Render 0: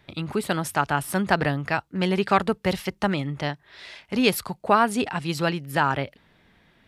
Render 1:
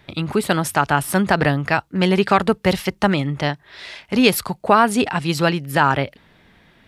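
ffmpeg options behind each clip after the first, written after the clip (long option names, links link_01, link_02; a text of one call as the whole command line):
ffmpeg -i in.wav -af "alimiter=level_in=7.5dB:limit=-1dB:release=50:level=0:latency=1,volume=-1dB" out.wav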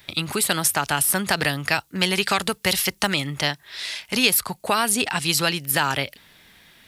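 ffmpeg -i in.wav -filter_complex "[0:a]crystalizer=i=8:c=0,acrossover=split=830|2200[link_01][link_02][link_03];[link_01]acompressor=threshold=-17dB:ratio=4[link_04];[link_02]acompressor=threshold=-19dB:ratio=4[link_05];[link_03]acompressor=threshold=-13dB:ratio=4[link_06];[link_04][link_05][link_06]amix=inputs=3:normalize=0,volume=-6dB" out.wav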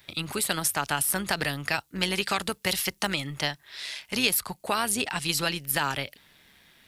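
ffmpeg -i in.wav -af "tremolo=f=140:d=0.4,volume=-4dB" out.wav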